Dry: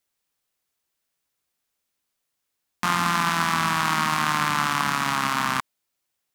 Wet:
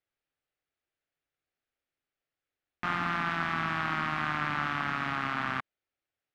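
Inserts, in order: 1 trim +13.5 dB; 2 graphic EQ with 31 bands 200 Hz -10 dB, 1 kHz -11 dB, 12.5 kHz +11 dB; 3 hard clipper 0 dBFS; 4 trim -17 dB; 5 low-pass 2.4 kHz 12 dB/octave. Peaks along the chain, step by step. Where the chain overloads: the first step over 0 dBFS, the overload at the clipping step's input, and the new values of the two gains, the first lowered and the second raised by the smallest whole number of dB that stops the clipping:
+8.0 dBFS, +9.0 dBFS, 0.0 dBFS, -17.0 dBFS, -17.0 dBFS; step 1, 9.0 dB; step 1 +4.5 dB, step 4 -8 dB

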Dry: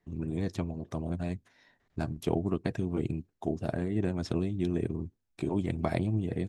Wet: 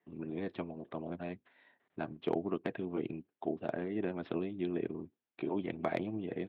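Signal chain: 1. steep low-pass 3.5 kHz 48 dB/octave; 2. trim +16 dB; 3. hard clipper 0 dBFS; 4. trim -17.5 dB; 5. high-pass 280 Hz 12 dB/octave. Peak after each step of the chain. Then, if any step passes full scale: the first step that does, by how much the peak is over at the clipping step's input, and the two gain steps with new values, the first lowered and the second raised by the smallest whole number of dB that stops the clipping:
-12.5 dBFS, +3.5 dBFS, 0.0 dBFS, -17.5 dBFS, -18.5 dBFS; step 2, 3.5 dB; step 2 +12 dB, step 4 -13.5 dB

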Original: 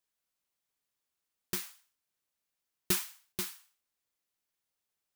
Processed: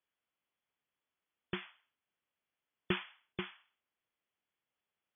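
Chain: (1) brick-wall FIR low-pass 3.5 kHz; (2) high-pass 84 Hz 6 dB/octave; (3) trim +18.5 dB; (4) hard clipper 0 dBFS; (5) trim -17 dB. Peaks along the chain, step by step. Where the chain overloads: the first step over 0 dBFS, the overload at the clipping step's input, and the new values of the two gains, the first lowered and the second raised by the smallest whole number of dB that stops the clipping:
-19.5 dBFS, -20.0 dBFS, -1.5 dBFS, -1.5 dBFS, -18.5 dBFS; nothing clips

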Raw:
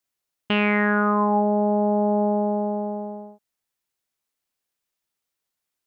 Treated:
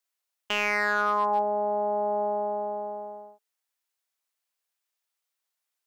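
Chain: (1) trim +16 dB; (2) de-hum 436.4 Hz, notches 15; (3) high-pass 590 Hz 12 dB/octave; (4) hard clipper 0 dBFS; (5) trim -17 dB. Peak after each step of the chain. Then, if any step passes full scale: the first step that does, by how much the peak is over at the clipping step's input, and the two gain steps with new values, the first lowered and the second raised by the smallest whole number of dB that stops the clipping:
+6.0 dBFS, +6.0 dBFS, +5.5 dBFS, 0.0 dBFS, -17.0 dBFS; step 1, 5.5 dB; step 1 +10 dB, step 5 -11 dB

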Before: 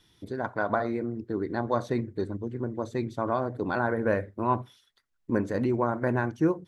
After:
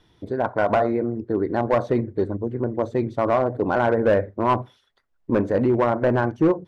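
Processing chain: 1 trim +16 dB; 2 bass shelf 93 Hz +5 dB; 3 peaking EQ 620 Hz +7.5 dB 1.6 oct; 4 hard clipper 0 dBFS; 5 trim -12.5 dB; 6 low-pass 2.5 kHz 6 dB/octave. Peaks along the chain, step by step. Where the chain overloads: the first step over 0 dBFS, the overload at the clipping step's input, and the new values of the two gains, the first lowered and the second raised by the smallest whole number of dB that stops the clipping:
+3.5 dBFS, +4.0 dBFS, +9.0 dBFS, 0.0 dBFS, -12.5 dBFS, -12.5 dBFS; step 1, 9.0 dB; step 1 +7 dB, step 5 -3.5 dB

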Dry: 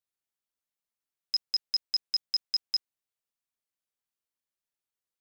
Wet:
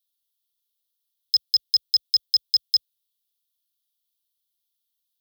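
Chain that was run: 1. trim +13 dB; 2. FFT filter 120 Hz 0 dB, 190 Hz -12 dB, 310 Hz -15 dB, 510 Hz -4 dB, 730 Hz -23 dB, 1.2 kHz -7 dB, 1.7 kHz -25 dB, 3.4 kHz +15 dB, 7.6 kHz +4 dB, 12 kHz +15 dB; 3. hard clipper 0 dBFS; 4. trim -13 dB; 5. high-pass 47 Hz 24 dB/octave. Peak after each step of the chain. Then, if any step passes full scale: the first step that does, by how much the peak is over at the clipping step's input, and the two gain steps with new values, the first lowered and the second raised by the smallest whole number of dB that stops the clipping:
-7.5 dBFS, +3.5 dBFS, 0.0 dBFS, -13.0 dBFS, -13.0 dBFS; step 2, 3.5 dB; step 1 +9 dB, step 4 -9 dB

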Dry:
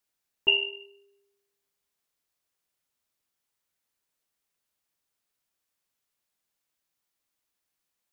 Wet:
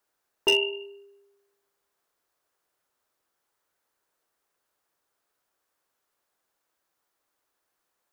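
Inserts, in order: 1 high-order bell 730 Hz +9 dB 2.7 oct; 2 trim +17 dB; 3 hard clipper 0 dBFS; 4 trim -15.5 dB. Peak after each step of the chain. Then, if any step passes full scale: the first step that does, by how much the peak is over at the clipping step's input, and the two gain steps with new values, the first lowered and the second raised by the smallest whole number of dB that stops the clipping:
-8.0 dBFS, +9.0 dBFS, 0.0 dBFS, -15.5 dBFS; step 2, 9.0 dB; step 2 +8 dB, step 4 -6.5 dB

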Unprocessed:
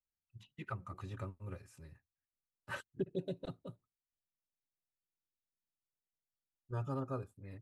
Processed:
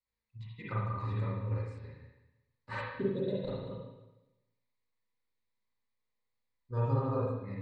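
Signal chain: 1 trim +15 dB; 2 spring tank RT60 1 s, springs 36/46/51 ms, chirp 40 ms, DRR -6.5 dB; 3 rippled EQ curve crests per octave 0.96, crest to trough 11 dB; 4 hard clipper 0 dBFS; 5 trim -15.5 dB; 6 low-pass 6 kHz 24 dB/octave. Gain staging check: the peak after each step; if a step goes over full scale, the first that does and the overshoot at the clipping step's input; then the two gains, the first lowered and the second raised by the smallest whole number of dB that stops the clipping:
-10.5 dBFS, -4.0 dBFS, -4.0 dBFS, -4.0 dBFS, -19.5 dBFS, -19.5 dBFS; nothing clips

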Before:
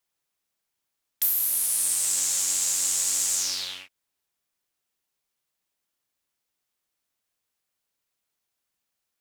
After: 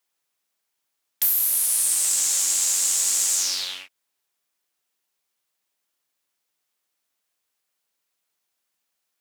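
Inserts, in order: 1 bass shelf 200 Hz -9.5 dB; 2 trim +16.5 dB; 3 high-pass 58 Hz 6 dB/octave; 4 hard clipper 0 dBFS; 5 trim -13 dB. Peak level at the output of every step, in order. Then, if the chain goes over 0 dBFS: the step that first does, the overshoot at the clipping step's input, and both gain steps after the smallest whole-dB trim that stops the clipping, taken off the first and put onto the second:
-9.5 dBFS, +7.0 dBFS, +7.0 dBFS, 0.0 dBFS, -13.0 dBFS; step 2, 7.0 dB; step 2 +9.5 dB, step 5 -6 dB

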